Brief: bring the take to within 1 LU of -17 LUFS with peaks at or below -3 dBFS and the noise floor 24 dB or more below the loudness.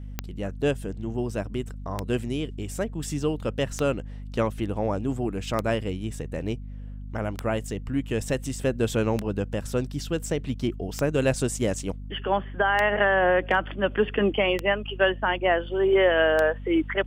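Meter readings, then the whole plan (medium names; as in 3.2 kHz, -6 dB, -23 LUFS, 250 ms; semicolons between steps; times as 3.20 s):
clicks found 10; hum 50 Hz; highest harmonic 250 Hz; hum level -34 dBFS; loudness -26.0 LUFS; peak level -9.0 dBFS; loudness target -17.0 LUFS
-> de-click; de-hum 50 Hz, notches 5; trim +9 dB; peak limiter -3 dBFS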